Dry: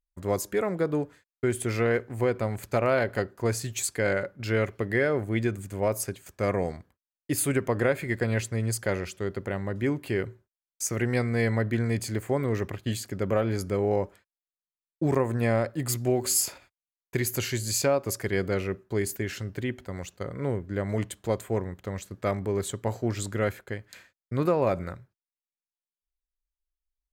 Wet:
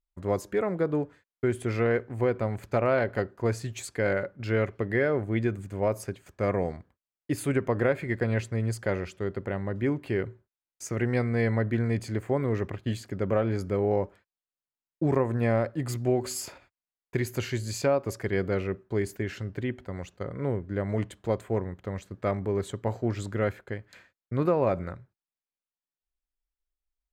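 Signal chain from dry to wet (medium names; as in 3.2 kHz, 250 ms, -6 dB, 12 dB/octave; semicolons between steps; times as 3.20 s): low-pass 2.3 kHz 6 dB/octave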